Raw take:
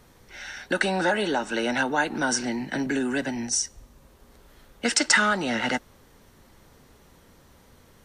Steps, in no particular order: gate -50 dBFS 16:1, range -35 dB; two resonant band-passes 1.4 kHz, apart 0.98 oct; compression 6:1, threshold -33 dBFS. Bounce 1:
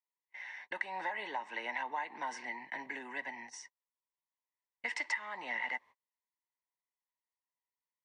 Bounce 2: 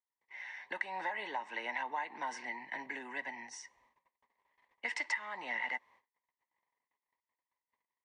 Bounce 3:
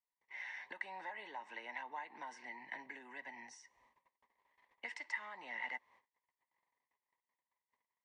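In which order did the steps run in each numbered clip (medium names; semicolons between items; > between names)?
two resonant band-passes > gate > compression; gate > two resonant band-passes > compression; gate > compression > two resonant band-passes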